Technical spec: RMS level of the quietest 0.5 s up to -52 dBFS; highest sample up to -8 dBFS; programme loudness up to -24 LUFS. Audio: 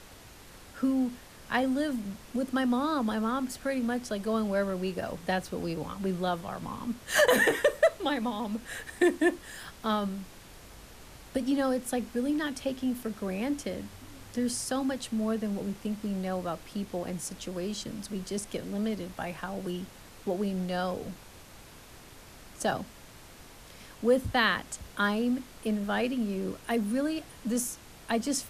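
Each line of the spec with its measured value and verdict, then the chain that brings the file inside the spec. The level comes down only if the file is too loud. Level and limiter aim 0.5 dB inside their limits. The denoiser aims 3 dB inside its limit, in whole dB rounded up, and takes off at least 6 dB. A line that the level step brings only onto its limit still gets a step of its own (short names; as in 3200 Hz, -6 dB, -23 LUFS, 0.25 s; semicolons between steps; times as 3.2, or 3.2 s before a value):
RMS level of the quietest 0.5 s -50 dBFS: fail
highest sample -12.0 dBFS: OK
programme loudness -31.0 LUFS: OK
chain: denoiser 6 dB, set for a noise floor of -50 dBFS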